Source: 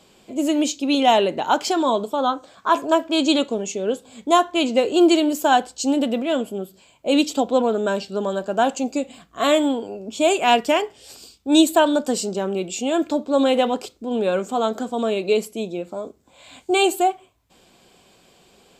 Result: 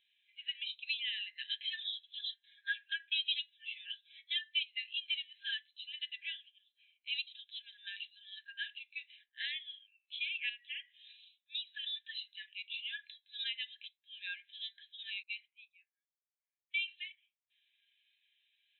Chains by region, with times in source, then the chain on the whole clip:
1.35–4.63 steep high-pass 1500 Hz + comb 7.3 ms, depth 96%
10.49–11.84 bell 13000 Hz +7 dB 1.9 oct + comb 4.1 ms, depth 34% + compressor 2:1, threshold -31 dBFS
15.23–16.88 tilt -3.5 dB/oct + low-pass opened by the level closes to 450 Hz, open at -10.5 dBFS
whole clip: FFT band-pass 1600–4100 Hz; compressor 3:1, threshold -36 dBFS; spectral expander 1.5:1

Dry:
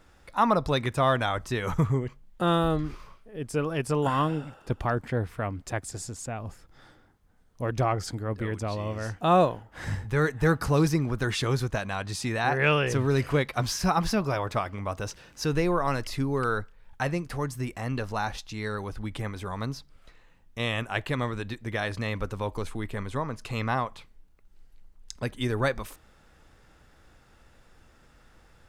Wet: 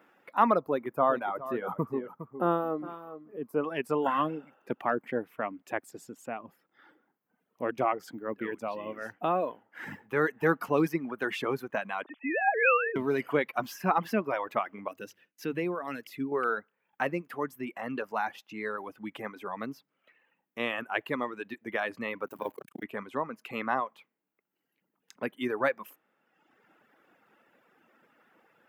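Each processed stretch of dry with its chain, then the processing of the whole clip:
0.61–3.64 band shelf 3900 Hz -12.5 dB 2.7 oct + echo 0.41 s -10 dB
7.99–10.07 compressor, threshold -22 dBFS + short-mantissa float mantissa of 6-bit
12.03–12.96 sine-wave speech + HPF 290 Hz + notch 720 Hz, Q 8.8
14.88–16.32 notches 50/100/150 Hz + gate with hold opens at -38 dBFS, closes at -45 dBFS + bell 900 Hz -10.5 dB 1.8 oct
22.27–22.83 zero-crossing step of -39 dBFS + high shelf 6800 Hz +8 dB + core saturation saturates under 380 Hz
whole clip: HPF 210 Hz 24 dB/oct; reverb removal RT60 1.2 s; band shelf 6100 Hz -14.5 dB

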